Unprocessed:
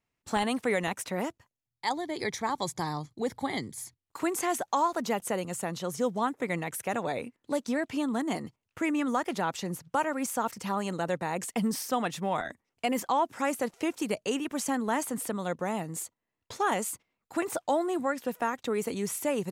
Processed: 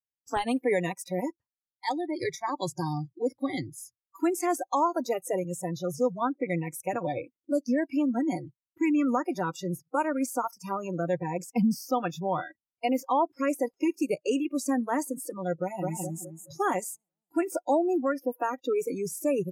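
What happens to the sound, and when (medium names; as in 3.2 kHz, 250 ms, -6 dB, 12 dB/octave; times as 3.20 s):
10.63–13.50 s: dynamic bell 9.6 kHz, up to -6 dB, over -52 dBFS, Q 1.4
15.61–16.03 s: echo throw 210 ms, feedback 50%, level -1.5 dB
whole clip: spectral noise reduction 30 dB; tilt shelf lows +4 dB, about 860 Hz; trim +1.5 dB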